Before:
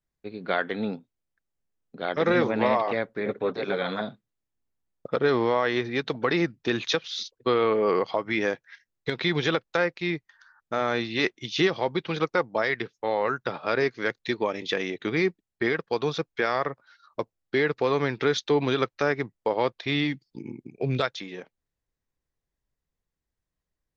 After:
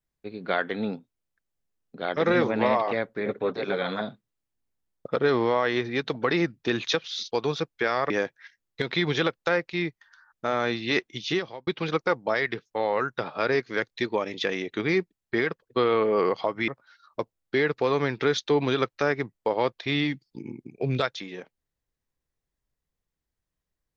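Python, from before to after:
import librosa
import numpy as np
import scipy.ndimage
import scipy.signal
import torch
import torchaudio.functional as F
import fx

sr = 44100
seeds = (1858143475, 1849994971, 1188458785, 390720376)

y = fx.edit(x, sr, fx.swap(start_s=7.32, length_s=1.06, other_s=15.9, other_length_s=0.78),
    fx.fade_out_span(start_s=11.44, length_s=0.51), tone=tone)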